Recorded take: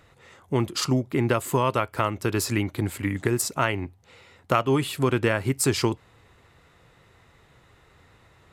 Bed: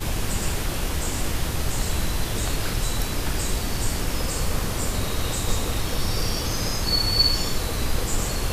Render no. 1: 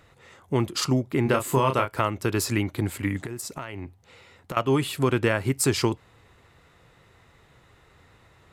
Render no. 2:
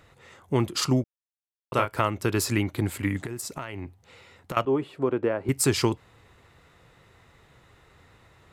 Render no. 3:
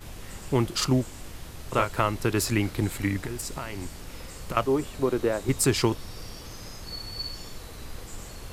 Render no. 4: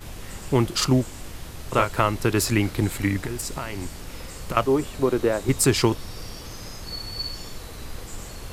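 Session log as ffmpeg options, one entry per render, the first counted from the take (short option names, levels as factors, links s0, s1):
-filter_complex "[0:a]asettb=1/sr,asplit=3[s0][s1][s2];[s0]atrim=end=1.234[s3];[s1]atrim=start=1.23:end=1.95,asetpts=PTS-STARTPTS,afade=t=in:d=0.004:c=qsin,afade=t=out:st=0.716:d=0.004:c=qsin,asplit=2[s4][s5];[s5]adelay=30,volume=0.501[s6];[s4][s6]amix=inputs=2:normalize=0,atrim=end_sample=31752[s7];[s2]atrim=start=1.946[s8];[s3][s7]acrossfade=d=0.004:c1=hsin:c2=qsin[s9];[s9][s8]acrossfade=d=0.004:c1=qsin:c2=hsin,asettb=1/sr,asplit=3[s10][s11][s12];[s10]atrim=end=3.254[s13];[s11]atrim=start=3.25:end=4.57,asetpts=PTS-STARTPTS,afade=t=in:d=0.004:c=qsin,afade=t=out:st=1.316:d=0.004:c=qsin,acompressor=threshold=0.0316:ratio=8:attack=3.2:release=140:knee=1:detection=peak[s14];[s12]atrim=start=4.566[s15];[s13][s14]acrossfade=d=0.004:c1=hsin:c2=qsin[s16];[s16][s15]acrossfade=d=0.004:c1=qsin:c2=hsin"
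-filter_complex "[0:a]asettb=1/sr,asplit=3[s0][s1][s2];[s0]atrim=end=4.654[s3];[s1]atrim=start=4.65:end=5.49,asetpts=PTS-STARTPTS,afade=t=in:d=0.004:c=qsin,afade=t=out:st=0.836:d=0.004:c=qsin,bandpass=f=470:t=q:w=0.96[s4];[s2]atrim=start=5.486[s5];[s3][s4]acrossfade=d=0.004:c1=hsin:c2=qsin[s6];[s6][s5]acrossfade=d=0.004:c1=qsin:c2=hsin,asplit=3[s7][s8][s9];[s7]atrim=end=1.04,asetpts=PTS-STARTPTS,afade=t=out:st=1.036:d=0.004:c=hsin[s10];[s8]atrim=start=1.04:end=1.72,asetpts=PTS-STARTPTS,volume=0[s11];[s9]atrim=start=1.72,asetpts=PTS-STARTPTS,afade=t=in:d=0.004:c=hsin[s12];[s10][s11][s12]concat=n=3:v=0:a=1"
-filter_complex "[1:a]volume=0.168[s0];[0:a][s0]amix=inputs=2:normalize=0"
-af "volume=1.5"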